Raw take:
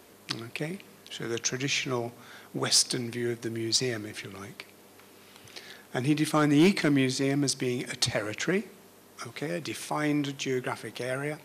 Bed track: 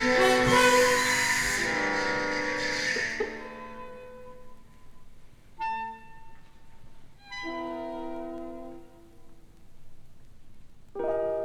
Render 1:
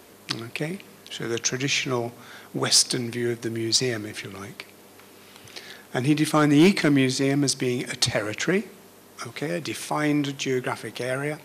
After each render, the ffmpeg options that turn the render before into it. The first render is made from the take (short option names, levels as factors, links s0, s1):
-af "volume=1.68"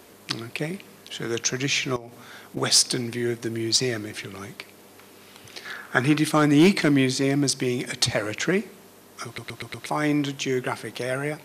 -filter_complex "[0:a]asettb=1/sr,asplit=3[s0][s1][s2];[s0]atrim=end=1.964[s3];[s1]atrim=start=1.96:end=2.57,asetpts=PTS-STARTPTS,afade=t=in:d=0.004:c=qsin,afade=t=out:st=0.606:d=0.004:c=qsin,acompressor=threshold=0.02:ratio=16:attack=3.2:release=140:knee=1:detection=peak[s4];[s2]atrim=start=2.566[s5];[s3][s4]acrossfade=d=0.004:c1=hsin:c2=qsin[s6];[s6][s5]acrossfade=d=0.004:c1=qsin:c2=hsin,asettb=1/sr,asplit=3[s7][s8][s9];[s7]atrim=end=5.654[s10];[s8]atrim=start=5.65:end=6.18,asetpts=PTS-STARTPTS,afade=t=in:d=0.004:c=qsin,afade=t=out:st=0.526:d=0.004:c=qsin,equalizer=f=1400:t=o:w=0.95:g=14[s11];[s9]atrim=start=6.176[s12];[s10][s11]acrossfade=d=0.004:c1=hsin:c2=qsin[s13];[s13][s12]acrossfade=d=0.004:c1=qsin:c2=hsin,asplit=6[s14][s15][s16][s17][s18][s19];[s14]atrim=end=9.382[s20];[s15]atrim=start=9.258:end=9.382[s21];[s16]atrim=start=9.258:end=9.382[s22];[s17]atrim=start=9.258:end=9.382[s23];[s18]atrim=start=9.258:end=9.382[s24];[s19]atrim=start=9.858[s25];[s20][s21]acrossfade=d=0.004:c1=hsin:c2=hsin[s26];[s26][s22]acrossfade=d=0.004:c1=hsin:c2=hsin[s27];[s27][s23]acrossfade=d=0.004:c1=hsin:c2=hsin[s28];[s28][s24]acrossfade=d=0.004:c1=hsin:c2=hsin[s29];[s29][s25]acrossfade=d=0.004:c1=hsin:c2=hsin"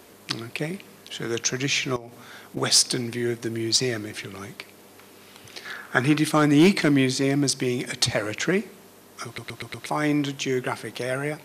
-af anull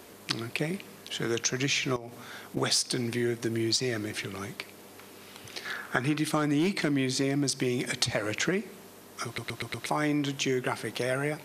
-af "acompressor=threshold=0.0631:ratio=6"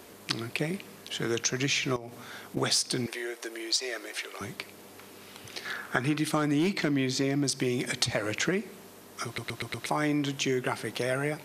-filter_complex "[0:a]asettb=1/sr,asplit=3[s0][s1][s2];[s0]atrim=end=3.064[s3];[s1]atrim=start=3.06:end=4.41,asetpts=PTS-STARTPTS,afade=t=in:d=0.004:c=qsin,afade=t=out:st=1.346:d=0.004:c=qsin,highpass=f=440:w=0.5412,highpass=f=440:w=1.3066[s4];[s2]atrim=start=4.406[s5];[s3][s4]acrossfade=d=0.004:c1=hsin:c2=qsin[s6];[s6][s5]acrossfade=d=0.004:c1=qsin:c2=hsin,asettb=1/sr,asplit=3[s7][s8][s9];[s7]atrim=end=6.704[s10];[s8]atrim=start=6.7:end=7.44,asetpts=PTS-STARTPTS,afade=t=in:d=0.004:c=qsin,afade=t=out:st=0.736:d=0.004:c=qsin,equalizer=f=9200:w=3.3:g=-9[s11];[s9]atrim=start=7.436[s12];[s10][s11]acrossfade=d=0.004:c1=hsin:c2=qsin[s13];[s13][s12]acrossfade=d=0.004:c1=qsin:c2=hsin"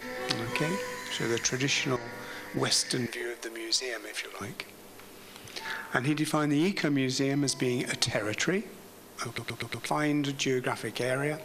-filter_complex "[1:a]volume=0.188[s0];[0:a][s0]amix=inputs=2:normalize=0"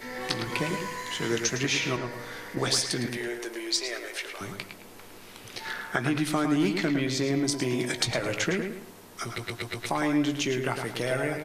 -filter_complex "[0:a]asplit=2[s0][s1];[s1]adelay=17,volume=0.266[s2];[s0][s2]amix=inputs=2:normalize=0,asplit=2[s3][s4];[s4]adelay=109,lowpass=f=3700:p=1,volume=0.501,asplit=2[s5][s6];[s6]adelay=109,lowpass=f=3700:p=1,volume=0.35,asplit=2[s7][s8];[s8]adelay=109,lowpass=f=3700:p=1,volume=0.35,asplit=2[s9][s10];[s10]adelay=109,lowpass=f=3700:p=1,volume=0.35[s11];[s5][s7][s9][s11]amix=inputs=4:normalize=0[s12];[s3][s12]amix=inputs=2:normalize=0"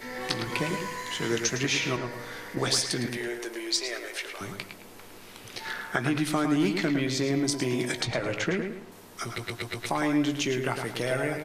-filter_complex "[0:a]asettb=1/sr,asplit=3[s0][s1][s2];[s0]atrim=end=8.014[s3];[s1]atrim=start=8.01:end=8.92,asetpts=PTS-STARTPTS,afade=t=in:d=0.004:c=qsin,afade=t=out:st=0.906:d=0.004:c=qsin,lowpass=f=3400:p=1[s4];[s2]atrim=start=8.916[s5];[s3][s4]acrossfade=d=0.004:c1=hsin:c2=qsin[s6];[s6][s5]acrossfade=d=0.004:c1=qsin:c2=hsin"